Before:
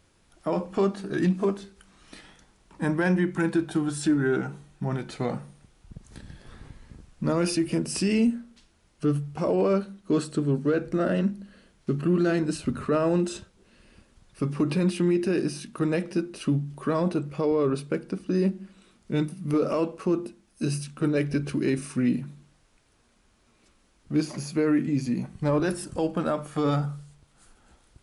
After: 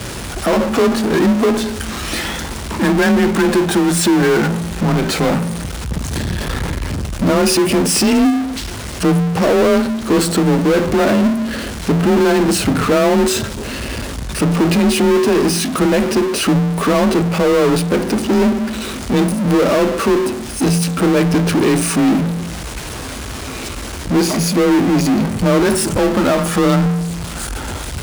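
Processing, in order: power-law waveshaper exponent 0.35; frequency shift +26 Hz; trim +5 dB

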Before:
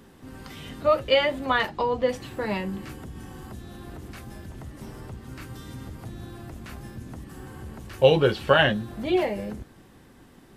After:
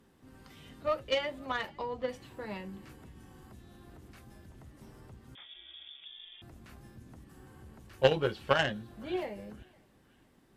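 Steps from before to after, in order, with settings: on a send: thinning echo 511 ms, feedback 44%, high-pass 920 Hz, level -22.5 dB; on the sum: Chebyshev shaper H 3 -13 dB, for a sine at -4 dBFS; 5.35–6.42 s: frequency inversion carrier 3.5 kHz; trim -3 dB

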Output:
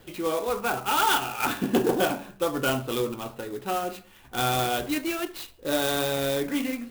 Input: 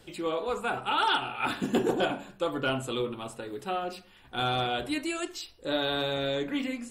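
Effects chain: steep low-pass 4.8 kHz 72 dB/octave; sampling jitter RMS 0.04 ms; trim +3.5 dB

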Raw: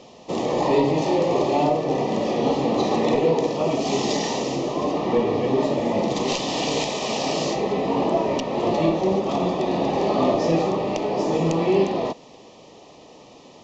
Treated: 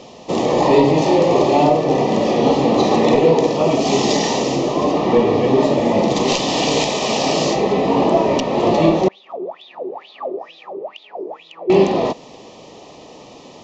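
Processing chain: 9.08–11.70 s: wah-wah 2.2 Hz 370–3800 Hz, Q 15; trim +6.5 dB

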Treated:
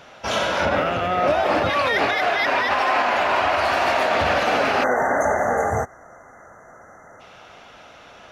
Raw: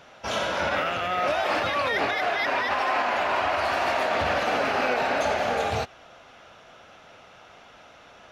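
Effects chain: 0.65–1.70 s: tilt shelf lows +5.5 dB, about 880 Hz; 4.83–7.20 s: spectral selection erased 2.1–5.8 kHz; trim +5 dB

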